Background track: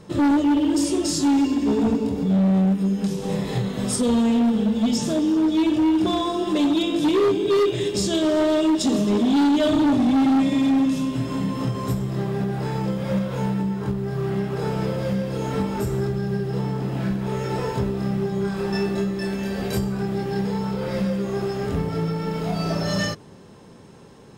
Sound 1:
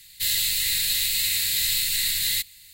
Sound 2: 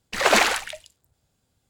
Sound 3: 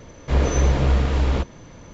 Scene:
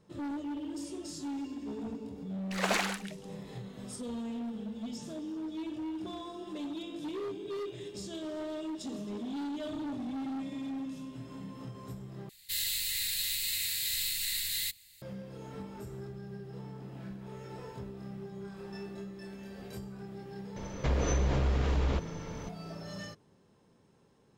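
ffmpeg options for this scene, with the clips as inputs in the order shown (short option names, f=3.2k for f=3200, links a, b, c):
-filter_complex "[0:a]volume=-19dB[a];[1:a]bandreject=f=50:t=h:w=6,bandreject=f=100:t=h:w=6,bandreject=f=150:t=h:w=6,bandreject=f=200:t=h:w=6,bandreject=f=250:t=h:w=6[b];[3:a]acompressor=threshold=-25dB:ratio=6:attack=3.2:release=140:knee=1:detection=peak[c];[a]asplit=2[d][e];[d]atrim=end=12.294[f];[b]atrim=end=2.73,asetpts=PTS-STARTPTS,volume=-9.5dB[g];[e]atrim=start=15.016[h];[2:a]atrim=end=1.69,asetpts=PTS-STARTPTS,volume=-12.5dB,afade=t=in:d=0.004:c=hsin,afade=t=out:st=1.686:d=0.004:c=hsin,adelay=2380[i];[c]atrim=end=1.93,asetpts=PTS-STARTPTS,afade=t=in:d=0.004:c=hsin,afade=t=out:st=1.926:d=0.004:c=hsin,adelay=20560[j];[f][g]acrossfade=d=0.004:c1=hsin:c2=hsin[k];[k][h]acrossfade=d=0.004:c1=hsin:c2=hsin[l];[l][i][j]amix=inputs=3:normalize=0"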